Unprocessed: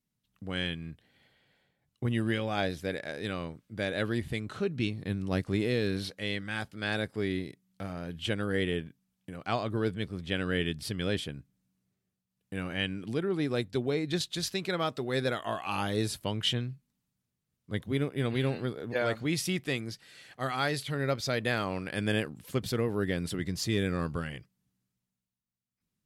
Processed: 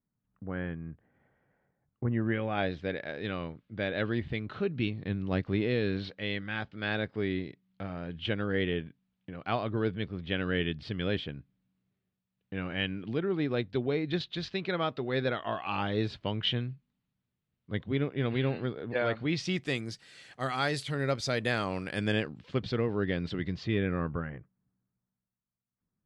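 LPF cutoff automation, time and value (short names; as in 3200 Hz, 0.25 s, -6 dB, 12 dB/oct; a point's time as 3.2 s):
LPF 24 dB/oct
2.08 s 1600 Hz
2.72 s 3800 Hz
19.26 s 3800 Hz
19.73 s 9400 Hz
21.89 s 9400 Hz
22.43 s 4300 Hz
23.42 s 4300 Hz
24.37 s 1600 Hz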